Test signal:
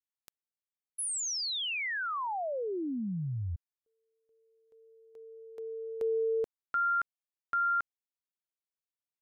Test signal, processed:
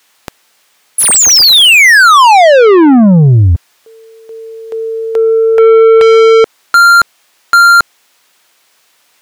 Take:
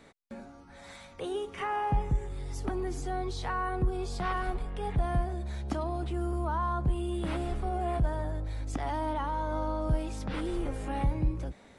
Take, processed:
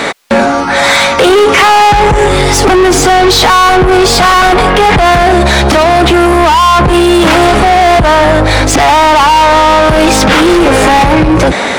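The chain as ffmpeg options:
-filter_complex "[0:a]asplit=2[a][b];[b]highpass=f=720:p=1,volume=32dB,asoftclip=type=tanh:threshold=-18dB[c];[a][c]amix=inputs=2:normalize=0,lowpass=f=4.6k:p=1,volume=-6dB,alimiter=level_in=23dB:limit=-1dB:release=50:level=0:latency=1,volume=-1dB"

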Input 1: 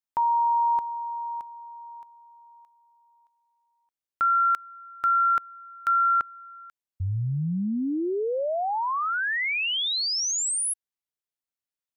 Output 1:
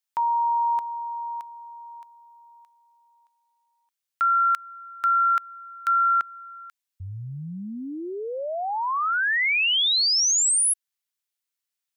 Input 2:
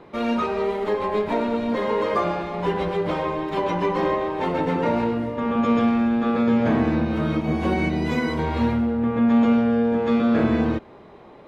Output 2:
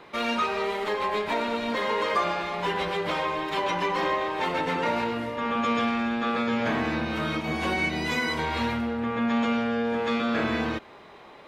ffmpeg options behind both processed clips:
-filter_complex "[0:a]tiltshelf=f=860:g=-8,asplit=2[a][b];[b]alimiter=limit=-20.5dB:level=0:latency=1:release=135,volume=-2.5dB[c];[a][c]amix=inputs=2:normalize=0,volume=-5dB"

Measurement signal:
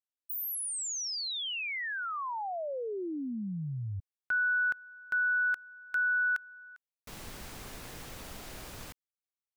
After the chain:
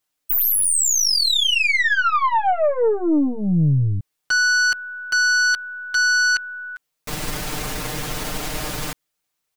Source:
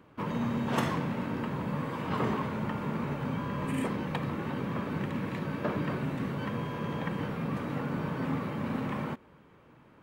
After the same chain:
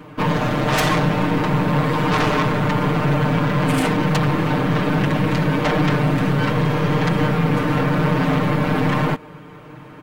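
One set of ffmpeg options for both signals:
-af "aeval=exprs='0.178*(cos(1*acos(clip(val(0)/0.178,-1,1)))-cos(1*PI/2))+0.0158*(cos(8*acos(clip(val(0)/0.178,-1,1)))-cos(8*PI/2))':c=same,aeval=exprs='0.158*sin(PI/2*3.55*val(0)/0.158)':c=same,aecho=1:1:6.6:0.98"

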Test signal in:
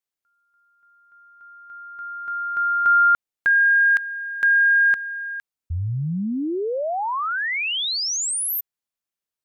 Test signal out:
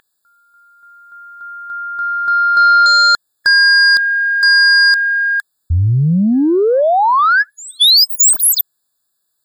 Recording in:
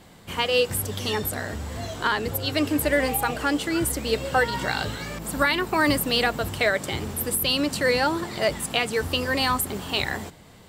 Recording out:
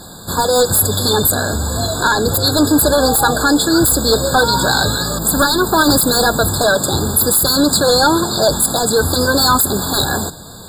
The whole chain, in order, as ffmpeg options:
-filter_complex "[0:a]highshelf=f=3.4k:g=11.5,aeval=exprs='val(0)+0.00794*sin(2*PI*2200*n/s)':c=same,asplit=2[a][b];[b]aeval=exprs='0.841*sin(PI/2*5.62*val(0)/0.841)':c=same,volume=-3.5dB[c];[a][c]amix=inputs=2:normalize=0,afftfilt=real='re*eq(mod(floor(b*sr/1024/1700),2),0)':imag='im*eq(mod(floor(b*sr/1024/1700),2),0)':win_size=1024:overlap=0.75,volume=-3.5dB"

